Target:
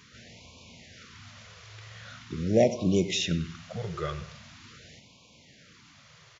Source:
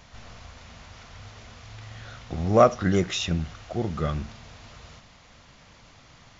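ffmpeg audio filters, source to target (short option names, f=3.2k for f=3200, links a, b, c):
-filter_complex "[0:a]highpass=130,equalizer=f=780:w=2.2:g=-11,asplit=2[a][b];[b]adelay=96,lowpass=f=4.6k:p=1,volume=-14.5dB,asplit=2[c][d];[d]adelay=96,lowpass=f=4.6k:p=1,volume=0.46,asplit=2[e][f];[f]adelay=96,lowpass=f=4.6k:p=1,volume=0.46,asplit=2[g][h];[h]adelay=96,lowpass=f=4.6k:p=1,volume=0.46[i];[c][e][g][i]amix=inputs=4:normalize=0[j];[a][j]amix=inputs=2:normalize=0,afftfilt=real='re*(1-between(b*sr/1024,230*pow(1600/230,0.5+0.5*sin(2*PI*0.43*pts/sr))/1.41,230*pow(1600/230,0.5+0.5*sin(2*PI*0.43*pts/sr))*1.41))':imag='im*(1-between(b*sr/1024,230*pow(1600/230,0.5+0.5*sin(2*PI*0.43*pts/sr))/1.41,230*pow(1600/230,0.5+0.5*sin(2*PI*0.43*pts/sr))*1.41))':win_size=1024:overlap=0.75"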